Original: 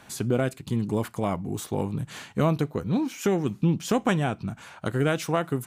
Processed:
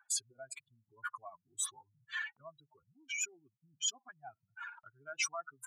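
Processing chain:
expanding power law on the bin magnitudes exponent 3.6
noise gate −45 dBFS, range −15 dB
inverse Chebyshev high-pass filter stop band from 530 Hz, stop band 40 dB
level +4 dB

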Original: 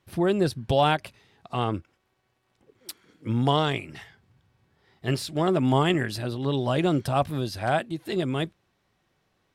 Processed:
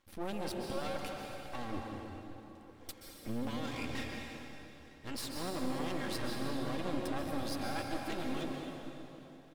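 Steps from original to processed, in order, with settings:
comb filter 3.7 ms, depth 69%
reversed playback
downward compressor 5 to 1, threshold −33 dBFS, peak gain reduction 17 dB
reversed playback
brickwall limiter −28.5 dBFS, peak gain reduction 8.5 dB
half-wave rectification
on a send: bucket-brigade delay 175 ms, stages 1,024, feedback 70%, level −11.5 dB
on the sum: dense smooth reverb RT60 3.1 s, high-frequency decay 0.85×, pre-delay 115 ms, DRR 0.5 dB
level +2 dB

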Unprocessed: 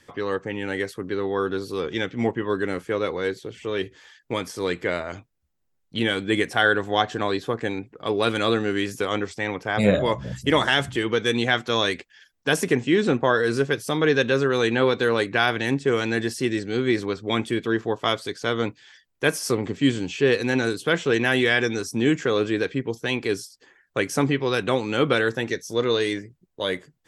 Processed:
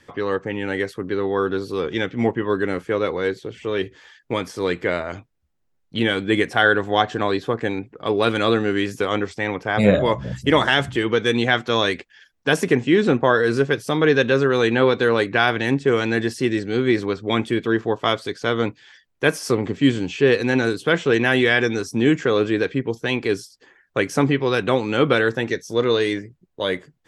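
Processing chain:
high-shelf EQ 5,500 Hz −8.5 dB
level +3.5 dB

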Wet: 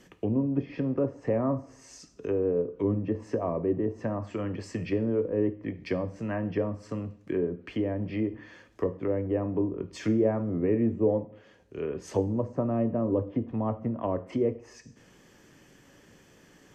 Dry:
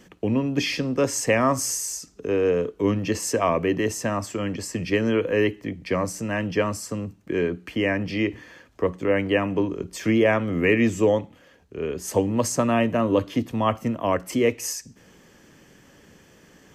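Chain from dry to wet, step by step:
treble cut that deepens with the level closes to 620 Hz, closed at −20.5 dBFS
coupled-rooms reverb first 0.45 s, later 1.6 s, from −22 dB, DRR 9.5 dB
level −4.5 dB

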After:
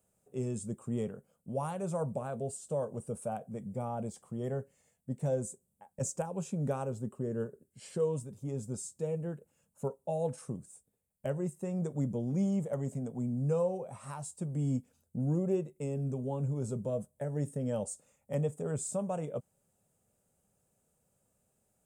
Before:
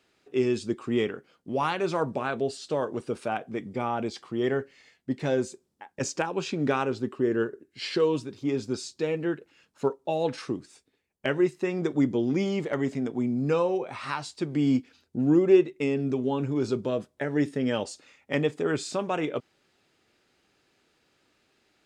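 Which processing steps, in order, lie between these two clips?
drawn EQ curve 200 Hz 0 dB, 320 Hz −19 dB, 540 Hz −3 dB, 2,000 Hz −23 dB, 3,000 Hz −21 dB, 4,500 Hz −24 dB, 8,300 Hz +6 dB

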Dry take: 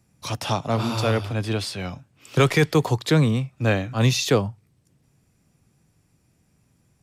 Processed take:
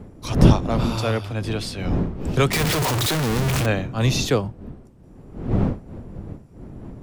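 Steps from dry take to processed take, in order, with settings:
0:02.53–0:03.66: sign of each sample alone
wind on the microphone 220 Hz −24 dBFS
level −1 dB

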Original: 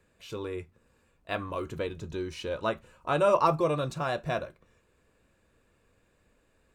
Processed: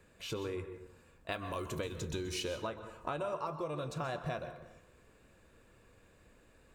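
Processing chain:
0:01.32–0:02.57: high-shelf EQ 3,800 Hz +11.5 dB
downward compressor 12 to 1, threshold −39 dBFS, peak gain reduction 21.5 dB
dense smooth reverb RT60 0.78 s, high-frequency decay 0.5×, pre-delay 115 ms, DRR 9.5 dB
level +4 dB

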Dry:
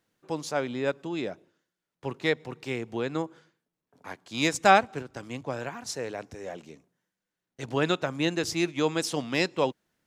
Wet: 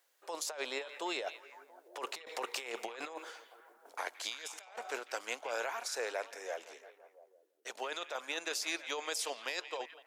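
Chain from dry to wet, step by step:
source passing by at 0:02.89, 14 m/s, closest 14 metres
high-pass filter 510 Hz 24 dB per octave
high-shelf EQ 7,700 Hz +10 dB
compressor whose output falls as the input rises −46 dBFS, ratio −1
on a send: echo through a band-pass that steps 170 ms, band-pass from 2,700 Hz, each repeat −0.7 octaves, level −9.5 dB
on the sum: level +4 dB

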